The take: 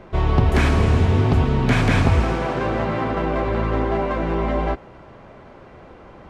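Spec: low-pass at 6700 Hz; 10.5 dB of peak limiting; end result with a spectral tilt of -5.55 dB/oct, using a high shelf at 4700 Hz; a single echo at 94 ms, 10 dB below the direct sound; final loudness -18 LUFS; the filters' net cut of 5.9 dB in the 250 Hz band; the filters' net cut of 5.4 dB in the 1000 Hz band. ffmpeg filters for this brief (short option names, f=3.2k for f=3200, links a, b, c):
-af "lowpass=6.7k,equalizer=f=250:t=o:g=-8,equalizer=f=1k:t=o:g=-7,highshelf=f=4.7k:g=8,alimiter=limit=-18dB:level=0:latency=1,aecho=1:1:94:0.316,volume=9dB"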